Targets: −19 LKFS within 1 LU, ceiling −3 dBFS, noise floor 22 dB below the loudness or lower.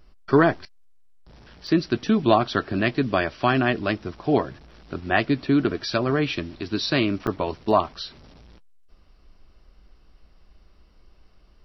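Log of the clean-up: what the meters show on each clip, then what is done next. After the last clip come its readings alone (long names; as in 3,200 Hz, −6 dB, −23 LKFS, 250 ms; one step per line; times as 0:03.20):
number of dropouts 2; longest dropout 4.0 ms; integrated loudness −23.0 LKFS; sample peak −3.5 dBFS; target loudness −19.0 LKFS
→ repair the gap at 0:01.67/0:07.27, 4 ms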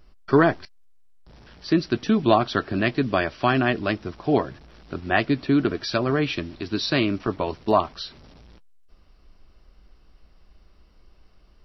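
number of dropouts 0; integrated loudness −23.0 LKFS; sample peak −3.5 dBFS; target loudness −19.0 LKFS
→ level +4 dB
brickwall limiter −3 dBFS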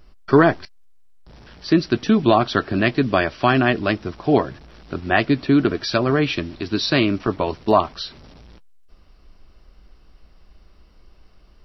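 integrated loudness −19.5 LKFS; sample peak −3.0 dBFS; background noise floor −51 dBFS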